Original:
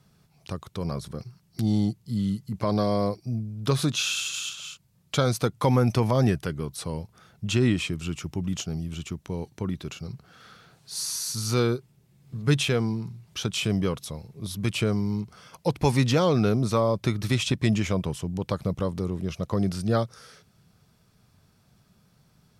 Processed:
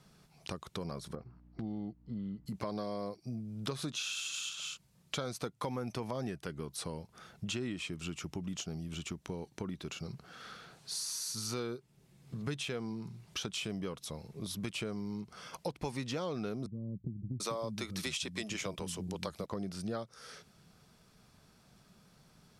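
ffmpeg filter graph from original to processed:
-filter_complex "[0:a]asettb=1/sr,asplit=3[s0][s1][s2];[s0]atrim=end=1.154[s3];[s1]atrim=start=1.15:end=2.46,asetpts=PTS-STARTPTS,afade=t=in:d=0.004:c=qsin,afade=t=out:st=1.306:d=0.004:c=qsin,lowpass=1200,equalizer=f=160:t=o:w=3:g=-6,aeval=exprs='val(0)+0.00158*(sin(2*PI*60*n/s)+sin(2*PI*2*60*n/s)/2+sin(2*PI*3*60*n/s)/3+sin(2*PI*4*60*n/s)/4+sin(2*PI*5*60*n/s)/5)':c=same[s4];[s2]atrim=start=2.456[s5];[s3][s4]acrossfade=d=0.004:c1=hsin:c2=qsin[s6];[s6][s5]acrossfade=d=0.004:c1=qsin:c2=hsin,asettb=1/sr,asplit=3[s7][s8][s9];[s7]atrim=end=16.664[s10];[s8]atrim=start=16.66:end=19.46,asetpts=PTS-STARTPTS,afade=t=in:d=0.004:c=qsin,afade=t=out:st=2.796:d=0.004:c=qsin,highshelf=f=2600:g=8,acrossover=split=240[s11][s12];[s12]adelay=740[s13];[s11][s13]amix=inputs=2:normalize=0,atrim=end_sample=123480[s14];[s9]atrim=start=19.456[s15];[s10][s14]acrossfade=d=0.004:c1=hsin:c2=qsin[s16];[s16][s15]acrossfade=d=0.004:c1=qsin:c2=hsin,lowpass=12000,equalizer=f=98:w=1.2:g=-9,acompressor=threshold=0.0112:ratio=4,volume=1.19"

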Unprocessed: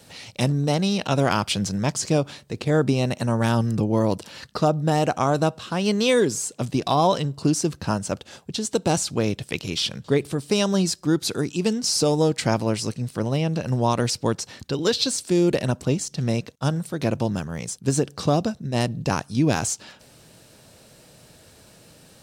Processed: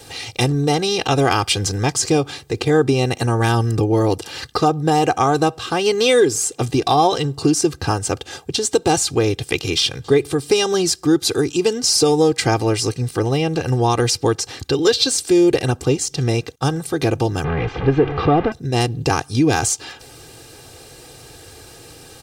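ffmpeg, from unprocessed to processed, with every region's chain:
-filter_complex "[0:a]asettb=1/sr,asplit=3[s0][s1][s2];[s0]atrim=end=17.444[s3];[s1]atrim=start=17.44:end=18.52,asetpts=PTS-STARTPTS,afade=t=in:d=0.004:c=qsin,afade=t=out:st=1.076:d=0.004:c=qsin,aeval=exprs='val(0)+0.5*0.0668*sgn(val(0))':c=same,lowpass=f=2900:w=0.5412,lowpass=f=2900:w=1.3066,aemphasis=mode=reproduction:type=cd[s4];[s2]atrim=start=18.516[s5];[s3][s4]acrossfade=d=0.004:c1=hsin:c2=qsin[s6];[s6][s5]acrossfade=d=0.004:c1=qsin:c2=hsin,aecho=1:1:2.5:0.8,acompressor=threshold=0.0398:ratio=1.5,volume=2.51"

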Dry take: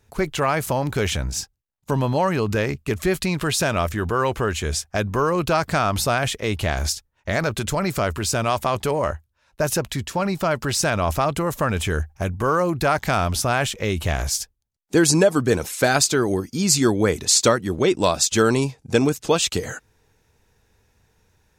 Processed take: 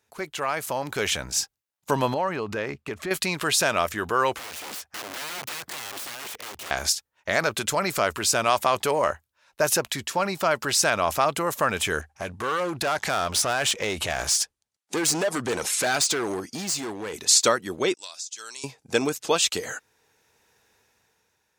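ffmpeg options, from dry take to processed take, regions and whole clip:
-filter_complex "[0:a]asettb=1/sr,asplit=3[s0][s1][s2];[s0]atrim=end=2.144[s3];[s1]atrim=start=2.14:end=3.11,asetpts=PTS-STARTPTS,afade=t=in:d=0.004:c=qsin,afade=t=out:st=0.966:d=0.004:c=qsin,lowpass=f=2200:p=1,acompressor=threshold=0.0631:ratio=3:attack=3.2:release=140:knee=1:detection=peak[s4];[s2]atrim=start=3.106[s5];[s3][s4]acrossfade=d=0.004:c1=hsin:c2=qsin[s6];[s6][s5]acrossfade=d=0.004:c1=qsin:c2=hsin,asettb=1/sr,asplit=3[s7][s8][s9];[s7]atrim=end=4.394[s10];[s8]atrim=start=4.39:end=6.71,asetpts=PTS-STARTPTS,afade=t=in:d=0.004:c=qsin,afade=t=out:st=2.316:d=0.004:c=qsin,highshelf=f=3200:g=-8.5,acompressor=threshold=0.0316:ratio=8:attack=3.2:release=140:knee=1:detection=peak,aeval=exprs='(mod(42.2*val(0)+1,2)-1)/42.2':c=same[s11];[s9]atrim=start=6.706[s12];[s10][s11]acrossfade=d=0.004:c1=hsin:c2=qsin[s13];[s13][s12]acrossfade=d=0.004:c1=qsin:c2=hsin,asettb=1/sr,asplit=3[s14][s15][s16];[s14]atrim=end=12.014[s17];[s15]atrim=start=12.01:end=17.14,asetpts=PTS-STARTPTS,afade=t=in:d=0.004:c=qsin,afade=t=out:st=5.126:d=0.004:c=qsin,lowpass=f=11000:w=0.5412,lowpass=f=11000:w=1.3066,acompressor=threshold=0.0794:ratio=3:attack=3.2:release=140:knee=1:detection=peak,volume=15,asoftclip=hard,volume=0.0668[s18];[s16]atrim=start=17.136[s19];[s17][s18]acrossfade=d=0.004:c1=hsin:c2=qsin[s20];[s20][s19]acrossfade=d=0.004:c1=qsin:c2=hsin,asettb=1/sr,asplit=3[s21][s22][s23];[s21]atrim=end=17.944[s24];[s22]atrim=start=17.94:end=18.64,asetpts=PTS-STARTPTS,afade=t=in:d=0.004:c=qsin,afade=t=out:st=0.696:d=0.004:c=qsin,bandpass=f=6200:t=q:w=1.6,acompressor=threshold=0.0282:ratio=8:attack=3.2:release=140:knee=1:detection=peak[s25];[s23]atrim=start=18.636[s26];[s24][s25]acrossfade=d=0.004:c1=hsin:c2=qsin[s27];[s27][s26]acrossfade=d=0.004:c1=qsin:c2=hsin,highpass=f=610:p=1,dynaudnorm=f=210:g=9:m=3.76,volume=0.562"

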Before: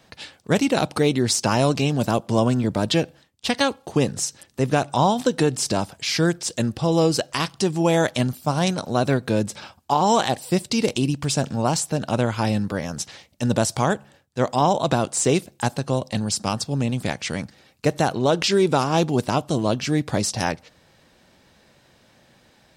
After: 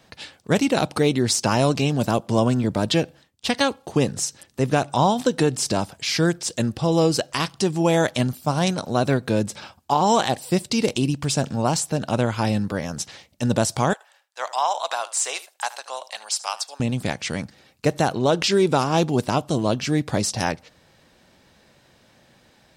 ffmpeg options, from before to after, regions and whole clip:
-filter_complex "[0:a]asettb=1/sr,asplit=3[s0][s1][s2];[s0]atrim=end=13.934[s3];[s1]atrim=start=13.93:end=16.8,asetpts=PTS-STARTPTS,afade=t=in:d=0.004:c=qsin,afade=t=out:st=2.866:d=0.004:c=qsin,highpass=f=740:w=0.5412,highpass=f=740:w=1.3066,aecho=1:1:75:0.141,atrim=end_sample=126567[s4];[s2]atrim=start=16.796[s5];[s3][s4]acrossfade=d=0.004:c1=hsin:c2=qsin[s6];[s6][s5]acrossfade=d=0.004:c1=qsin:c2=hsin"

